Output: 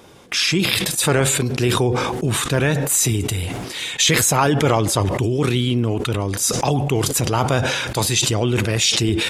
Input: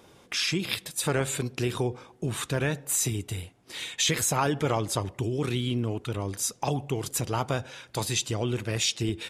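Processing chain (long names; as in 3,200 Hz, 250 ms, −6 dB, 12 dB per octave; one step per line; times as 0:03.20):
level that may fall only so fast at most 27 dB per second
level +8.5 dB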